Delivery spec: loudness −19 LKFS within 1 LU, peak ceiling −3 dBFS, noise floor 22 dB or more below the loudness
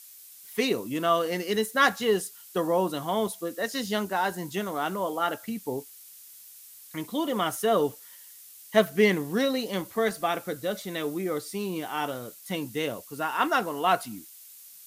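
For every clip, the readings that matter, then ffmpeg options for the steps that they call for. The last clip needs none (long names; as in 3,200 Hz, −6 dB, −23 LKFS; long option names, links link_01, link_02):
background noise floor −49 dBFS; target noise floor −50 dBFS; integrated loudness −28.0 LKFS; sample peak −7.5 dBFS; target loudness −19.0 LKFS
→ -af "afftdn=noise_reduction=6:noise_floor=-49"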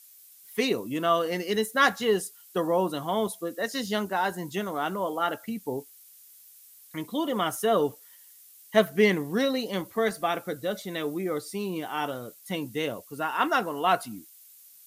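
background noise floor −53 dBFS; integrated loudness −28.0 LKFS; sample peak −7.5 dBFS; target loudness −19.0 LKFS
→ -af "volume=9dB,alimiter=limit=-3dB:level=0:latency=1"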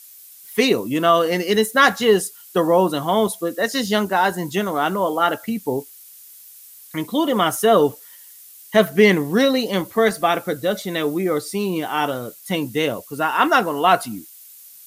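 integrated loudness −19.5 LKFS; sample peak −3.0 dBFS; background noise floor −44 dBFS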